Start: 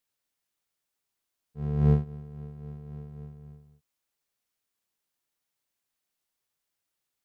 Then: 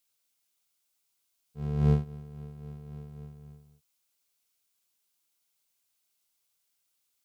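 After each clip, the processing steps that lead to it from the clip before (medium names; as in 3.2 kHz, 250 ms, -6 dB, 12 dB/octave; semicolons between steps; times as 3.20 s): treble shelf 2.2 kHz +10 dB; band-stop 1.8 kHz, Q 8.2; trim -2 dB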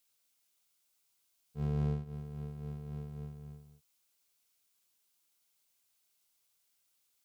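compression 16:1, threshold -29 dBFS, peak gain reduction 12.5 dB; trim +1 dB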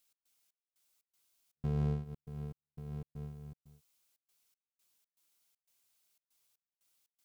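trance gate "x.xx..xx.xxx.xxx" 119 bpm -60 dB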